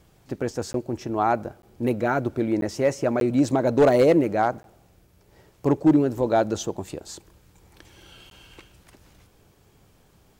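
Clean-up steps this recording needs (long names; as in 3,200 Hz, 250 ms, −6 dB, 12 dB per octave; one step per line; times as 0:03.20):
clipped peaks rebuilt −10.5 dBFS
repair the gap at 0:00.73/0:01.62/0:02.61/0:03.20/0:04.63/0:08.30, 12 ms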